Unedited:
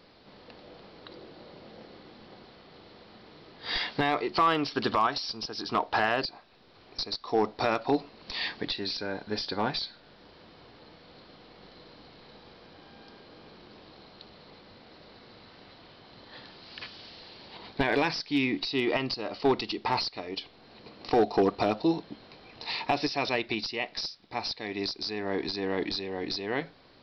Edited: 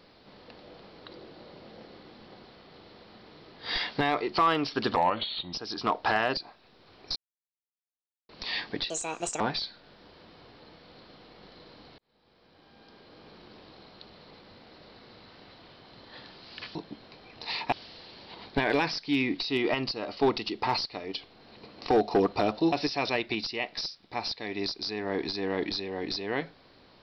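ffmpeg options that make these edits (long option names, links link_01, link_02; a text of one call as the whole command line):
ffmpeg -i in.wav -filter_complex "[0:a]asplit=11[link_01][link_02][link_03][link_04][link_05][link_06][link_07][link_08][link_09][link_10][link_11];[link_01]atrim=end=4.964[link_12];[link_02]atrim=start=4.96:end=5.41,asetpts=PTS-STARTPTS,asetrate=34839,aresample=44100,atrim=end_sample=25120,asetpts=PTS-STARTPTS[link_13];[link_03]atrim=start=5.406:end=7.04,asetpts=PTS-STARTPTS,afade=type=out:start_time=1.63:duration=0.004:curve=hsin[link_14];[link_04]atrim=start=7.04:end=8.17,asetpts=PTS-STARTPTS,volume=0[link_15];[link_05]atrim=start=8.17:end=8.784,asetpts=PTS-STARTPTS,afade=type=in:duration=0.004:curve=hsin[link_16];[link_06]atrim=start=8.78:end=9.6,asetpts=PTS-STARTPTS,asetrate=71883,aresample=44100,atrim=end_sample=22185,asetpts=PTS-STARTPTS[link_17];[link_07]atrim=start=9.596:end=12.18,asetpts=PTS-STARTPTS,afade=type=out:start_time=2.58:duration=0.004:curve=hsin[link_18];[link_08]atrim=start=12.18:end=16.952,asetpts=PTS-STARTPTS,afade=type=in:duration=1.4[link_19];[link_09]atrim=start=21.948:end=22.922[link_20];[link_10]atrim=start=16.948:end=21.952[link_21];[link_11]atrim=start=22.918[link_22];[link_12][link_13]acrossfade=duration=0.004:curve1=hsin:curve2=hsin[link_23];[link_14][link_15][link_16]concat=n=3:v=0:a=1[link_24];[link_23][link_24]acrossfade=duration=0.004:curve1=hsin:curve2=hsin[link_25];[link_25][link_17]acrossfade=duration=0.004:curve1=hsin:curve2=hsin[link_26];[link_18][link_19]concat=n=2:v=0:a=1[link_27];[link_26][link_27]acrossfade=duration=0.004:curve1=hsin:curve2=hsin[link_28];[link_28][link_20]acrossfade=duration=0.004:curve1=hsin:curve2=hsin[link_29];[link_29][link_21]acrossfade=duration=0.004:curve1=hsin:curve2=hsin[link_30];[link_30][link_22]acrossfade=duration=0.004:curve1=hsin:curve2=hsin" out.wav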